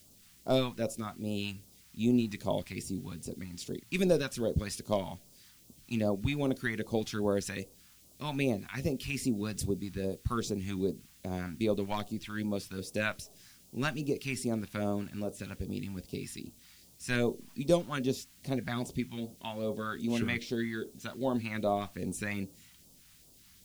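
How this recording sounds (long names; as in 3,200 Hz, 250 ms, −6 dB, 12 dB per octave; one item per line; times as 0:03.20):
a quantiser's noise floor 10 bits, dither triangular
phaser sweep stages 2, 2.5 Hz, lowest notch 440–1,800 Hz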